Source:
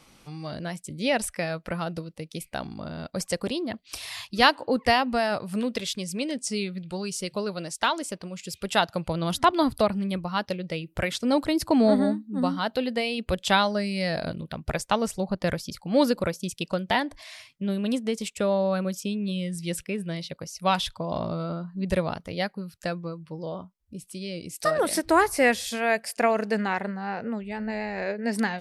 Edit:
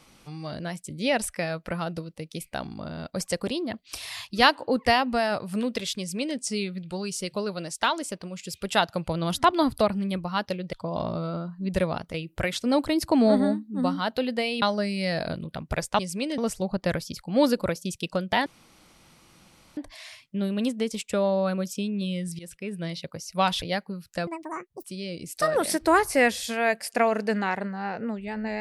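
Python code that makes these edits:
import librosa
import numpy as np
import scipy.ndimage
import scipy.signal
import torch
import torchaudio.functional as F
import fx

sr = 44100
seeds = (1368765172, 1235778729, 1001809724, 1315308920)

y = fx.edit(x, sr, fx.duplicate(start_s=5.98, length_s=0.39, to_s=14.96),
    fx.cut(start_s=13.21, length_s=0.38),
    fx.insert_room_tone(at_s=17.04, length_s=1.31),
    fx.fade_in_from(start_s=19.66, length_s=0.47, floor_db=-17.5),
    fx.move(start_s=20.89, length_s=1.41, to_s=10.73),
    fx.speed_span(start_s=22.95, length_s=1.13, speed=1.96), tone=tone)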